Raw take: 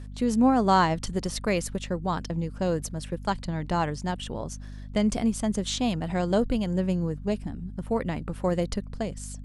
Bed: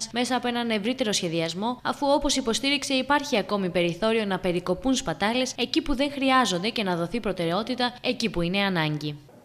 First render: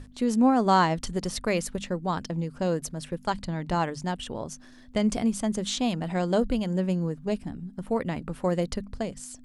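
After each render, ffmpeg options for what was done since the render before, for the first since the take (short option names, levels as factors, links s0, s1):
-af "bandreject=f=50:t=h:w=6,bandreject=f=100:t=h:w=6,bandreject=f=150:t=h:w=6,bandreject=f=200:t=h:w=6"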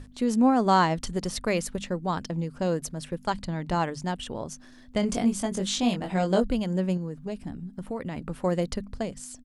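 -filter_complex "[0:a]asplit=3[s0][s1][s2];[s0]afade=t=out:st=5.02:d=0.02[s3];[s1]asplit=2[s4][s5];[s5]adelay=21,volume=0.631[s6];[s4][s6]amix=inputs=2:normalize=0,afade=t=in:st=5.02:d=0.02,afade=t=out:st=6.4:d=0.02[s7];[s2]afade=t=in:st=6.4:d=0.02[s8];[s3][s7][s8]amix=inputs=3:normalize=0,asettb=1/sr,asplit=3[s9][s10][s11];[s9]atrim=end=6.974[s12];[s10]atrim=start=6.97:end=8.18,asetpts=PTS-STARTPTS,afade=t=in:d=0.004:c=qsin,afade=t=out:st=1.206:d=0.004:c=qsin,acompressor=threshold=0.0355:ratio=4:attack=3.2:release=140:knee=1:detection=peak[s13];[s11]atrim=start=8.176[s14];[s12][s13]acrossfade=d=0.004:c1=hsin:c2=qsin[s15];[s15][s14]acrossfade=d=0.004:c1=qsin:c2=hsin"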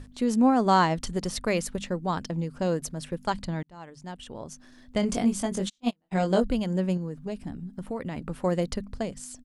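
-filter_complex "[0:a]asplit=3[s0][s1][s2];[s0]afade=t=out:st=5.68:d=0.02[s3];[s1]agate=range=0.00708:threshold=0.0794:ratio=16:release=100:detection=peak,afade=t=in:st=5.68:d=0.02,afade=t=out:st=6.11:d=0.02[s4];[s2]afade=t=in:st=6.11:d=0.02[s5];[s3][s4][s5]amix=inputs=3:normalize=0,asplit=2[s6][s7];[s6]atrim=end=3.63,asetpts=PTS-STARTPTS,afade=t=out:st=3.626:d=0.004:c=hsin[s8];[s7]atrim=start=3.63,asetpts=PTS-STARTPTS,afade=t=in:d=1.35[s9];[s8][s9]concat=n=2:v=0:a=1"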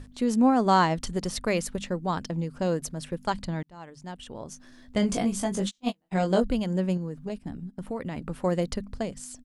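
-filter_complex "[0:a]asettb=1/sr,asplit=3[s0][s1][s2];[s0]atrim=end=4.474[s3];[s1]atrim=start=4.47:end=6.01,asetpts=PTS-STARTPTS,afade=t=in:d=0.004:c=qsin,afade=t=out:st=1.536:d=0.004:c=qsin,asplit=2[s4][s5];[s5]adelay=15,volume=0.447[s6];[s4][s6]amix=inputs=2:normalize=0,atrim=end_sample=67914[s7];[s2]atrim=start=6.006[s8];[s3][s7]acrossfade=d=0.004:c1=hsin:c2=qsin[s9];[s9][s8]acrossfade=d=0.004:c1=qsin:c2=hsin,asettb=1/sr,asplit=3[s10][s11][s12];[s10]atrim=end=7.294[s13];[s11]atrim=start=7.29:end=7.83,asetpts=PTS-STARTPTS,afade=t=in:d=0.004:c=qsin,afade=t=out:st=0.536:d=0.004:c=qsin,agate=range=0.316:threshold=0.00891:ratio=16:release=100:detection=peak[s14];[s12]atrim=start=7.826[s15];[s13][s14]acrossfade=d=0.004:c1=hsin:c2=qsin[s16];[s16][s15]acrossfade=d=0.004:c1=qsin:c2=hsin"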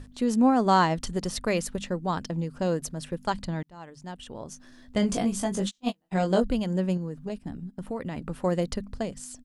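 -af "bandreject=f=2200:w=24"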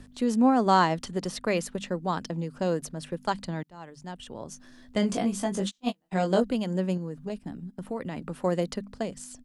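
-filter_complex "[0:a]acrossover=split=140|1100|4400[s0][s1][s2][s3];[s0]acompressor=threshold=0.00316:ratio=6[s4];[s3]alimiter=level_in=1.68:limit=0.0631:level=0:latency=1:release=440,volume=0.596[s5];[s4][s1][s2][s5]amix=inputs=4:normalize=0"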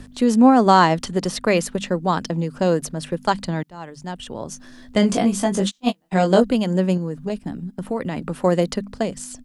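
-af "volume=2.66,alimiter=limit=0.891:level=0:latency=1"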